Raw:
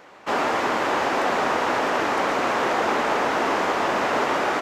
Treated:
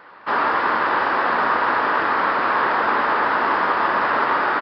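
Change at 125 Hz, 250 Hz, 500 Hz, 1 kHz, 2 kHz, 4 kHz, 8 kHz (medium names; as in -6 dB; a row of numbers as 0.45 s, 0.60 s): -2.0 dB, -2.0 dB, -2.0 dB, +4.5 dB, +5.0 dB, -2.5 dB, under -20 dB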